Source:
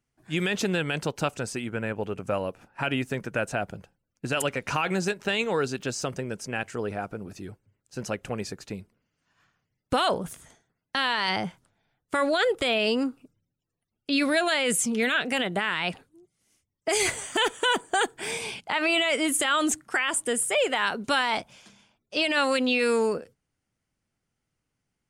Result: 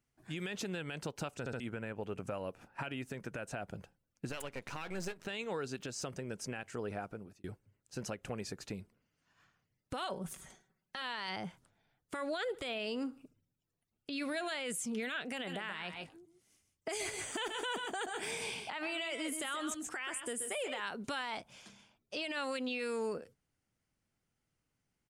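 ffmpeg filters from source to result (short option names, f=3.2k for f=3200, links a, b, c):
-filter_complex "[0:a]asettb=1/sr,asplit=3[a][b][c];[a]atrim=end=4.294[d];[b]atrim=start=4.29:end=5.27,asetpts=PTS-STARTPTS,afade=t=in:d=0.004:c=qsin,afade=t=out:st=0.976:d=0.004:c=qsin,aeval=exprs='if(lt(val(0),0),0.251*val(0),val(0))':c=same[e];[c]atrim=start=5.266[f];[d][e]acrossfade=d=0.004:c1=hsin:c2=qsin[g];[g][f]acrossfade=d=0.004:c1=qsin:c2=hsin,asettb=1/sr,asplit=3[h][i][j];[h]atrim=end=10.024[k];[i]atrim=start=10.02:end=11.02,asetpts=PTS-STARTPTS,afade=t=in:d=0.004:c=qsin,afade=t=out:st=0.996:d=0.004:c=qsin,aecho=1:1:5.3:0.65,atrim=end_sample=44100[l];[j]atrim=start=11.016[m];[k][l]acrossfade=d=0.004:c1=hsin:c2=qsin[n];[n][m]acrossfade=d=0.004:c1=qsin:c2=hsin,asplit=3[o][p][q];[o]afade=t=out:st=12.47:d=0.02[r];[p]aecho=1:1:71|142:0.075|0.0247,afade=t=in:st=12.47:d=0.02,afade=t=out:st=14.62:d=0.02[s];[q]afade=t=in:st=14.62:d=0.02[t];[r][s][t]amix=inputs=3:normalize=0,asettb=1/sr,asplit=3[u][v][w];[u]atrim=end=15.344[x];[v]atrim=start=15.34:end=20.8,asetpts=PTS-STARTPTS,afade=t=in:d=0.004:c=qsin,afade=t=out:st=5.456:d=0.004:c=qsin,aecho=1:1:130|149:0.355|0.178,atrim=end_sample=240786[y];[w]atrim=start=20.796[z];[x][y]acrossfade=d=0.004:c1=hsin:c2=qsin[aa];[aa][z]acrossfade=d=0.004:c1=qsin:c2=hsin,asplit=5[ab][ac][ad][ae][af];[ab]atrim=end=1.462[ag];[ac]atrim=start=1.388:end=1.462[ah];[ad]atrim=start=1.388:end=1.462[ai];[ae]atrim=start=1.598:end=7.44,asetpts=PTS-STARTPTS,afade=t=out:st=5.312:d=0.53[aj];[af]atrim=start=7.44,asetpts=PTS-STARTPTS,afade=t=in:d=0.004:c=hsin[ak];[ag][ah]acrossfade=d=0.004:c1=hsin:c2=hsin[al];[al][ai]acrossfade=d=0.004:c1=hsin:c2=hsin[am];[aj][ak]concat=n=2:v=0:a=1[an];[am][an]acrossfade=d=0.004:c1=hsin:c2=hsin,acompressor=threshold=-34dB:ratio=2.5,alimiter=level_in=1.5dB:limit=-24dB:level=0:latency=1:release=183,volume=-1.5dB,volume=-3dB"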